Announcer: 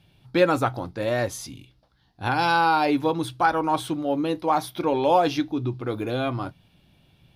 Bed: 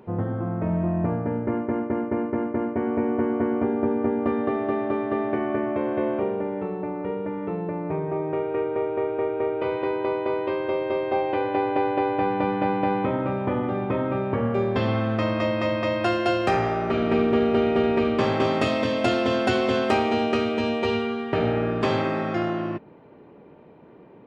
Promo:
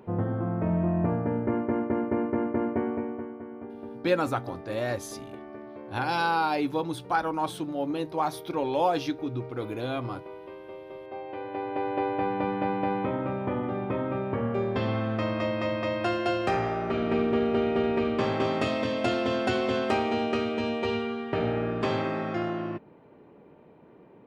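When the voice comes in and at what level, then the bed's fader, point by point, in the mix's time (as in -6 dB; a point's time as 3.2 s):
3.70 s, -5.5 dB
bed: 2.77 s -1.5 dB
3.39 s -17 dB
10.98 s -17 dB
12.01 s -4.5 dB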